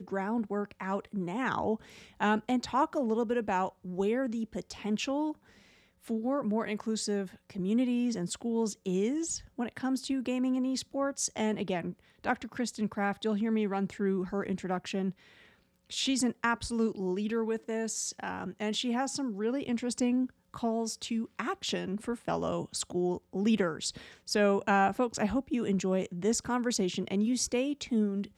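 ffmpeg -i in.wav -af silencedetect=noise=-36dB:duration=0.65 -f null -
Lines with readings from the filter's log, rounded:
silence_start: 5.32
silence_end: 6.10 | silence_duration: 0.78
silence_start: 15.10
silence_end: 15.91 | silence_duration: 0.81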